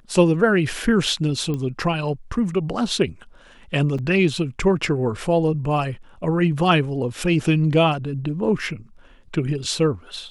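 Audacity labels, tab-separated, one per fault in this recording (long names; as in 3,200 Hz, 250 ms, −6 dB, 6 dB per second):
1.540000	1.540000	click −16 dBFS
3.980000	3.990000	drop-out 5.7 ms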